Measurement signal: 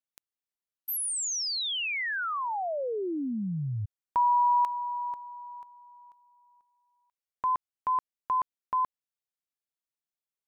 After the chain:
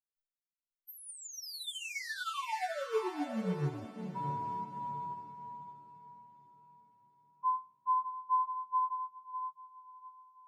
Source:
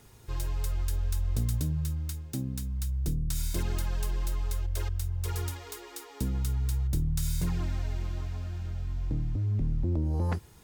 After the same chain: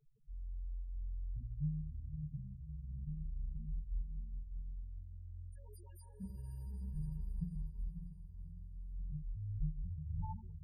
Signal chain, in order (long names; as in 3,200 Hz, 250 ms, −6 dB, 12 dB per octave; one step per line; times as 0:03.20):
resonators tuned to a chord D3 major, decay 0.36 s
spectral peaks only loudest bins 2
on a send: feedback delay with all-pass diffusion 597 ms, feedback 45%, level −5 dB
on the sum: expander for the loud parts 1.5 to 1, over −58 dBFS
level +14.5 dB